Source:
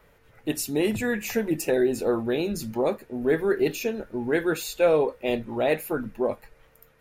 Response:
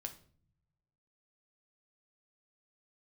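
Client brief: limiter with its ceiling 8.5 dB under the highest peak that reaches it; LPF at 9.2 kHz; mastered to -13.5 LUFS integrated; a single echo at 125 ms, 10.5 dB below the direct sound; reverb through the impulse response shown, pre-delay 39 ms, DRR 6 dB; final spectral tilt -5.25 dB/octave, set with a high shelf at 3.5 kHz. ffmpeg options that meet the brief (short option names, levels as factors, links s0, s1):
-filter_complex "[0:a]lowpass=9200,highshelf=f=3500:g=-4.5,alimiter=limit=0.106:level=0:latency=1,aecho=1:1:125:0.299,asplit=2[s0][s1];[1:a]atrim=start_sample=2205,adelay=39[s2];[s1][s2]afir=irnorm=-1:irlink=0,volume=0.708[s3];[s0][s3]amix=inputs=2:normalize=0,volume=5.62"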